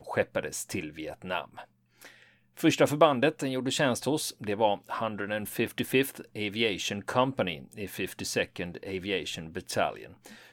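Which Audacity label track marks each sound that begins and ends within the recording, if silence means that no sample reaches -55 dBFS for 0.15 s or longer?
1.970000	2.340000	sound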